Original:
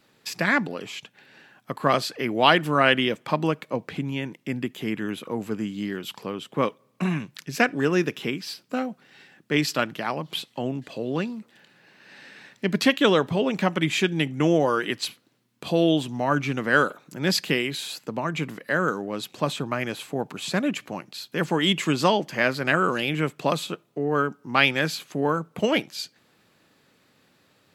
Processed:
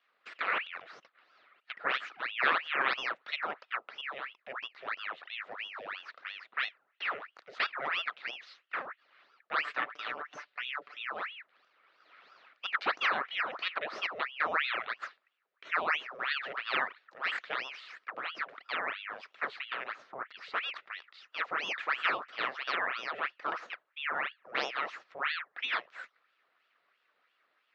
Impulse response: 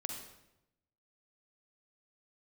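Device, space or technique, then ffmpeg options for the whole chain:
voice changer toy: -filter_complex "[0:a]aeval=exprs='val(0)*sin(2*PI*1700*n/s+1700*0.85/3*sin(2*PI*3*n/s))':c=same,highpass=490,equalizer=f=870:t=q:w=4:g=-5,equalizer=f=1.3k:t=q:w=4:g=7,equalizer=f=1.8k:t=q:w=4:g=4,equalizer=f=3.2k:t=q:w=4:g=-4,lowpass=f=3.7k:w=0.5412,lowpass=f=3.7k:w=1.3066,asettb=1/sr,asplit=3[a][b][c];[a]atrim=end=9.654[d];[b]atrim=start=9.65:end=11.05,asetpts=PTS-STARTPTS,afade=t=in:d=0.004:c=qsin,afade=t=out:st=1.396:d=0.004:c=qsin,aecho=1:1:6.8:0.63,atrim=end_sample=61740[e];[c]atrim=start=11.046[f];[d][e]acrossfade=d=0.004:c1=hsin:c2=qsin[g];[g][f]acrossfade=d=0.004:c1=qsin:c2=hsin,volume=-8.5dB"

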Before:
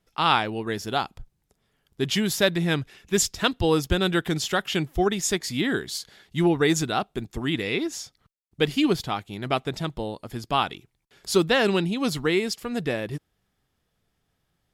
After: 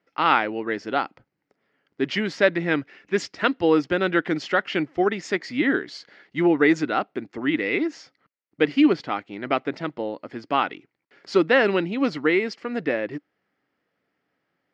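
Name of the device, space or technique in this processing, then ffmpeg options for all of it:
kitchen radio: -af "highpass=230,equalizer=f=290:t=q:w=4:g=8,equalizer=f=540:t=q:w=4:g=5,equalizer=f=1.4k:t=q:w=4:g=4,equalizer=f=2k:t=q:w=4:g=7,equalizer=f=3.6k:t=q:w=4:g=-10,lowpass=f=4.5k:w=0.5412,lowpass=f=4.5k:w=1.3066"

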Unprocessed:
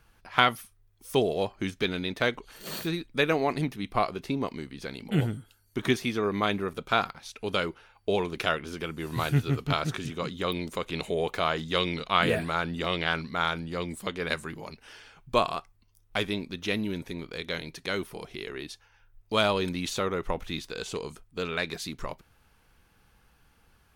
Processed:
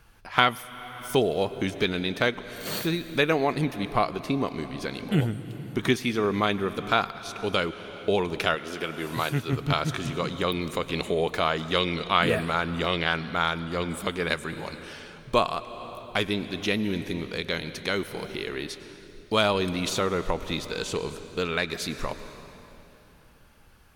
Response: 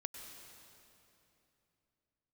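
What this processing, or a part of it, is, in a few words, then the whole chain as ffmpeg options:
ducked reverb: -filter_complex "[0:a]asplit=3[a][b][c];[1:a]atrim=start_sample=2205[d];[b][d]afir=irnorm=-1:irlink=0[e];[c]apad=whole_len=1056437[f];[e][f]sidechaincompress=threshold=-28dB:ratio=8:attack=10:release=548,volume=1.5dB[g];[a][g]amix=inputs=2:normalize=0,asettb=1/sr,asplit=3[h][i][j];[h]atrim=end=8.554[k];[i]atrim=start=8.55:end=9.53,asetpts=PTS-STARTPTS,afade=t=in:d=0.004:c=qsin,afade=t=out:st=0.976:d=0.004:c=qsin,highpass=f=250:p=1[l];[j]atrim=start=9.526[m];[k][l]acrossfade=d=0.004:c1=hsin:c2=qsin[n];[n][m]acrossfade=d=0.004:c1=qsin:c2=hsin"

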